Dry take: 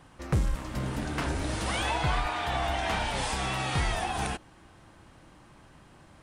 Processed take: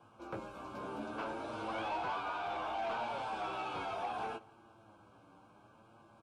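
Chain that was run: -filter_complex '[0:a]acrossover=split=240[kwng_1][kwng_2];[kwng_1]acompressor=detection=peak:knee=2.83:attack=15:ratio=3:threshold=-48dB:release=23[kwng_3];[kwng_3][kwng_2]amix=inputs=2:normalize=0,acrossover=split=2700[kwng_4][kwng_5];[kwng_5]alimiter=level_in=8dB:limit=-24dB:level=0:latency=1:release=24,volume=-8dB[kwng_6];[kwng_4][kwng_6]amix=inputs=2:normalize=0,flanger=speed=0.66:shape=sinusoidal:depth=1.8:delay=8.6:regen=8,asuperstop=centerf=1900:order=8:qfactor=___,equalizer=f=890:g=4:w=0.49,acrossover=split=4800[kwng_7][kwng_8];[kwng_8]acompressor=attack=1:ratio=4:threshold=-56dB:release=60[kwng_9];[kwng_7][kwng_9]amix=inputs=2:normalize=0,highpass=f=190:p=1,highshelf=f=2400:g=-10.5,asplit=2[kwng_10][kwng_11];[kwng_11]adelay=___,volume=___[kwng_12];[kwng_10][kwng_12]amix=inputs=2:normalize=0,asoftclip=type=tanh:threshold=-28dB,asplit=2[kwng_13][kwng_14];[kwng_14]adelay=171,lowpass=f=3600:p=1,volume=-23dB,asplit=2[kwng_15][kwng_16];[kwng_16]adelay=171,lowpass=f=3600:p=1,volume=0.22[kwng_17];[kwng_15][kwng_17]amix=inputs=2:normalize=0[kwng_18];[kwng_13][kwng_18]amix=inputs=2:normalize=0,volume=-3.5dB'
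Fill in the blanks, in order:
3.6, 18, -6dB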